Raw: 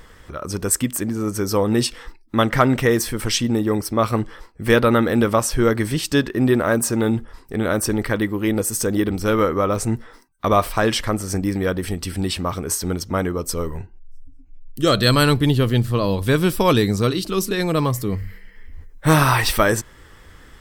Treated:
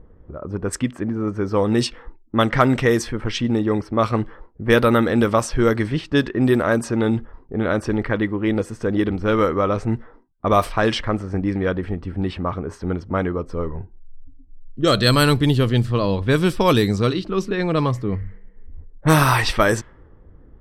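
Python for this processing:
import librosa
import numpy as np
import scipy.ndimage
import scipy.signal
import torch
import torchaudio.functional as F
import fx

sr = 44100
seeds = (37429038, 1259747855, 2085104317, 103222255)

y = fx.env_lowpass(x, sr, base_hz=440.0, full_db=-11.5)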